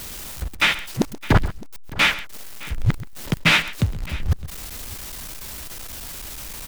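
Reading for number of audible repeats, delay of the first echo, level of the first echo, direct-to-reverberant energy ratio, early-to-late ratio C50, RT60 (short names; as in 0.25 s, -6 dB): 2, 0.13 s, -16.5 dB, none, none, none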